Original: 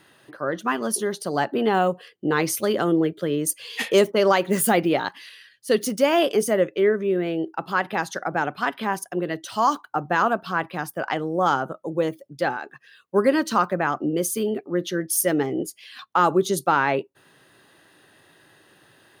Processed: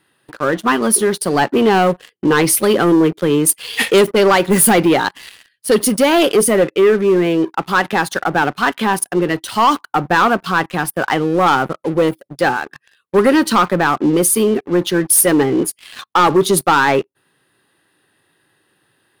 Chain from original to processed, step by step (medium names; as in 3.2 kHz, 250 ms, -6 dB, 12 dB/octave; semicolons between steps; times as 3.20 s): graphic EQ with 31 bands 630 Hz -6 dB, 6.3 kHz -7 dB, 10 kHz +6 dB; waveshaping leveller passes 3